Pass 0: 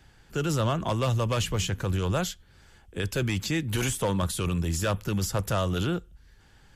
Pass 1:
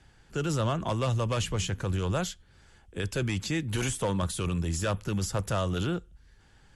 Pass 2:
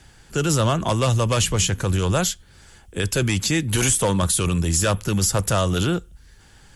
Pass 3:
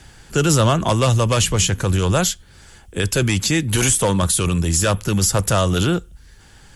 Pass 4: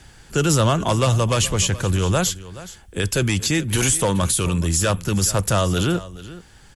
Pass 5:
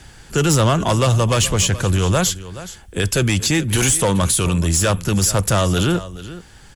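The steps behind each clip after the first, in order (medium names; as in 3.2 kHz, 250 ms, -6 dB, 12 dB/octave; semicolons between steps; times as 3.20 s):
Chebyshev low-pass 11 kHz, order 5; trim -2 dB
treble shelf 6.3 kHz +12 dB; trim +8 dB
gain riding within 4 dB 2 s; trim +3 dB
delay 424 ms -17 dB; trim -2 dB
saturation -12.5 dBFS, distortion -20 dB; trim +4 dB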